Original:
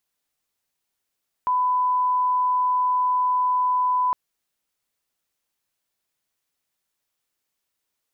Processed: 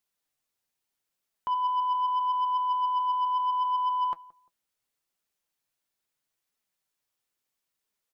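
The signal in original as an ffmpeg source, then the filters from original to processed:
-f lavfi -i "sine=f=1000:d=2.66:r=44100,volume=0.06dB"
-filter_complex "[0:a]flanger=delay=4.4:depth=5.1:regen=61:speed=0.76:shape=triangular,asoftclip=type=tanh:threshold=-22dB,asplit=2[a][b];[b]adelay=174,lowpass=f=920:p=1,volume=-19.5dB,asplit=2[c][d];[d]adelay=174,lowpass=f=920:p=1,volume=0.3[e];[a][c][e]amix=inputs=3:normalize=0"

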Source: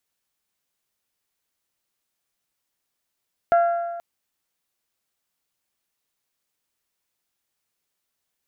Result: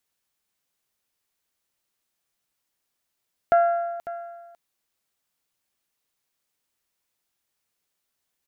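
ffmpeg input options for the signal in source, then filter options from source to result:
-f lavfi -i "aevalsrc='0.237*pow(10,-3*t/1.51)*sin(2*PI*686*t)+0.0708*pow(10,-3*t/1.227)*sin(2*PI*1372*t)+0.0211*pow(10,-3*t/1.161)*sin(2*PI*1646.4*t)+0.00631*pow(10,-3*t/1.086)*sin(2*PI*2058*t)+0.00188*pow(10,-3*t/0.996)*sin(2*PI*2744*t)':d=0.48:s=44100"
-af "aecho=1:1:549:0.168"

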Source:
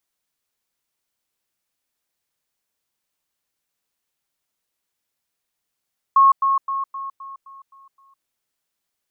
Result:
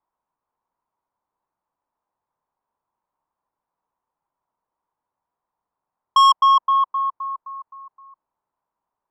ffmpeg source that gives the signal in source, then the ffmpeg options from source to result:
-f lavfi -i "aevalsrc='pow(10,(-9-6*floor(t/0.26))/20)*sin(2*PI*1090*t)*clip(min(mod(t,0.26),0.16-mod(t,0.26))/0.005,0,1)':d=2.08:s=44100"
-af "lowpass=f=970:t=q:w=4.9,asoftclip=type=tanh:threshold=-10.5dB"

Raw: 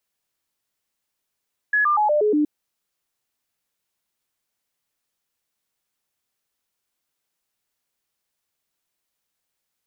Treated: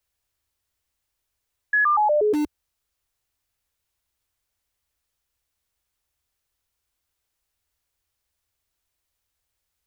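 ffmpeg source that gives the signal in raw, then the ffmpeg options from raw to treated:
-f lavfi -i "aevalsrc='0.168*clip(min(mod(t,0.12),0.12-mod(t,0.12))/0.005,0,1)*sin(2*PI*1690*pow(2,-floor(t/0.12)/2)*mod(t,0.12))':d=0.72:s=44100"
-filter_complex "[0:a]lowshelf=f=110:t=q:w=1.5:g=13.5,acrossover=split=200[a][b];[a]aeval=exprs='(mod(50.1*val(0)+1,2)-1)/50.1':c=same[c];[c][b]amix=inputs=2:normalize=0"

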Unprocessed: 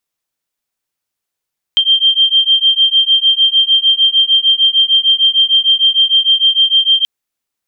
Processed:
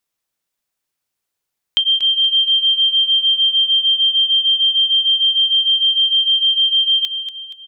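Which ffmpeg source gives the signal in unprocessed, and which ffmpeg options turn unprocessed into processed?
-f lavfi -i "aevalsrc='0.282*(sin(2*PI*3160*t)+sin(2*PI*3166.6*t))':d=5.28:s=44100"
-filter_complex "[0:a]acompressor=threshold=-15dB:ratio=2.5,asplit=2[a][b];[b]aecho=0:1:237|474|711|948|1185:0.299|0.137|0.0632|0.0291|0.0134[c];[a][c]amix=inputs=2:normalize=0"

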